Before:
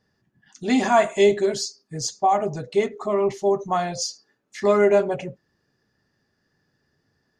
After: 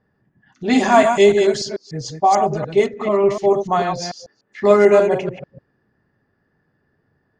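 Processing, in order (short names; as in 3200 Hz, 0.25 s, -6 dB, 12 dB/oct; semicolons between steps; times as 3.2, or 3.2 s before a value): reverse delay 0.147 s, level -6 dB; low-pass opened by the level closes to 1800 Hz, open at -13.5 dBFS; gain +4.5 dB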